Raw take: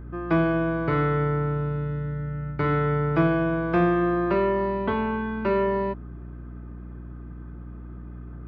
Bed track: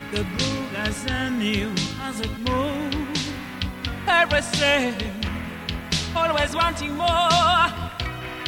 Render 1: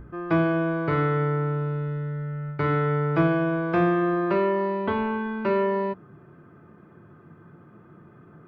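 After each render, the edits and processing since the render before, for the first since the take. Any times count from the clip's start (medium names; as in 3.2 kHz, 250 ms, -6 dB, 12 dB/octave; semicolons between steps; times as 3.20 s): hum notches 60/120/180/240/300/360 Hz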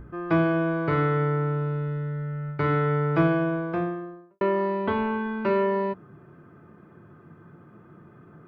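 3.23–4.41 s: studio fade out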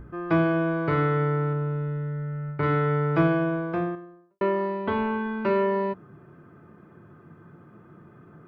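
1.53–2.63 s: distance through air 240 m; 3.95–4.92 s: upward expansion, over -37 dBFS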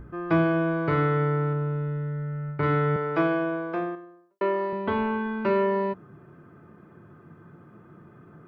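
2.96–4.73 s: high-pass 280 Hz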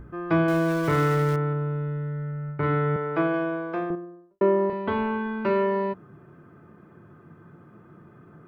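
0.48–1.36 s: jump at every zero crossing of -31 dBFS; 2.31–3.34 s: distance through air 170 m; 3.90–4.70 s: tilt EQ -4.5 dB/octave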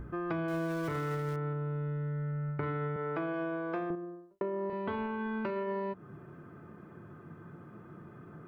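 peak limiter -19 dBFS, peak gain reduction 7.5 dB; compression, threshold -32 dBFS, peak gain reduction 9.5 dB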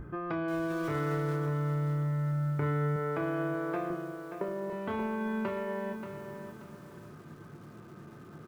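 doubling 27 ms -8 dB; bit-crushed delay 581 ms, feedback 35%, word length 9-bit, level -8 dB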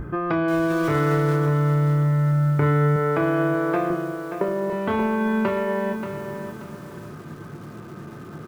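trim +11 dB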